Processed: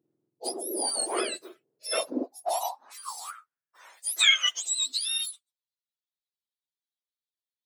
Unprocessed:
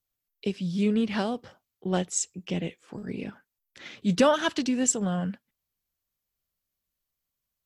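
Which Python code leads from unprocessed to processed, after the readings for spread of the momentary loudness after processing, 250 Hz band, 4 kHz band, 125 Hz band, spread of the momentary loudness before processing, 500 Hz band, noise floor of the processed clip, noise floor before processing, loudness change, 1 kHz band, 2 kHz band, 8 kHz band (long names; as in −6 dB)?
19 LU, −13.5 dB, +11.5 dB, below −35 dB, 16 LU, −6.5 dB, below −85 dBFS, −85 dBFS, +0.5 dB, −1.5 dB, +5.0 dB, +1.5 dB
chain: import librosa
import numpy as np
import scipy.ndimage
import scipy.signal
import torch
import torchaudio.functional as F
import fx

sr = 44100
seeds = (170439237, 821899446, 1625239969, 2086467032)

y = fx.octave_mirror(x, sr, pivot_hz=1400.0)
y = fx.filter_sweep_highpass(y, sr, from_hz=340.0, to_hz=3900.0, start_s=1.44, end_s=4.94, q=4.7)
y = fx.dynamic_eq(y, sr, hz=1100.0, q=0.9, threshold_db=-45.0, ratio=4.0, max_db=5)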